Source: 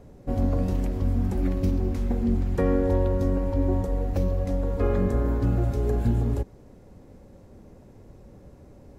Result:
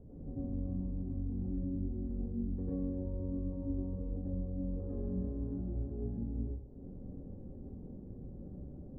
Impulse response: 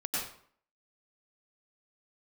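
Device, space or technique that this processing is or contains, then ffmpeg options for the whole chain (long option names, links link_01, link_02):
television next door: -filter_complex "[0:a]acompressor=threshold=-40dB:ratio=4,lowpass=360[link_01];[1:a]atrim=start_sample=2205[link_02];[link_01][link_02]afir=irnorm=-1:irlink=0,volume=-2dB"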